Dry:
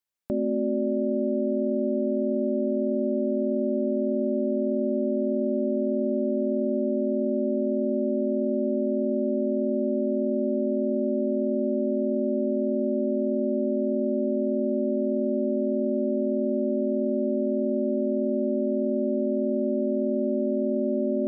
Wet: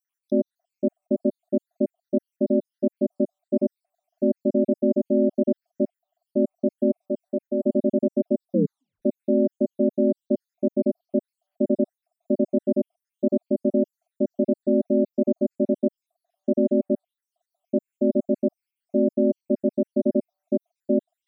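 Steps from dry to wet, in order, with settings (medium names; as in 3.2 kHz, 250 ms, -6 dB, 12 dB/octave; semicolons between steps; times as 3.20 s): random holes in the spectrogram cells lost 76%; 7.07–7.65 s: bass shelf 250 Hz -10.5 dB; 8.51 s: tape stop 0.51 s; trim +6.5 dB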